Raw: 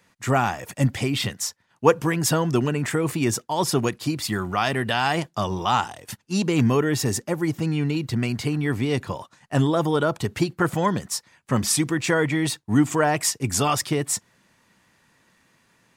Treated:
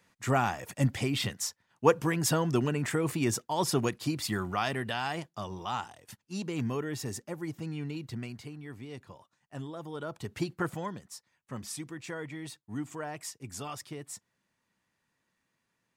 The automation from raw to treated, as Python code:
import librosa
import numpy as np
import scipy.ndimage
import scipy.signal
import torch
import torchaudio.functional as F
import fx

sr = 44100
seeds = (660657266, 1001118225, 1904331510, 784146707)

y = fx.gain(x, sr, db=fx.line((4.42, -6.0), (5.31, -13.0), (8.13, -13.0), (8.56, -20.0), (9.83, -20.0), (10.54, -8.0), (11.0, -18.0)))